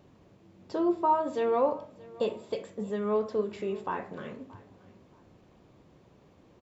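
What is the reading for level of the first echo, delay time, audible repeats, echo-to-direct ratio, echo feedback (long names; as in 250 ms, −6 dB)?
−21.5 dB, 627 ms, 2, −21.0 dB, 25%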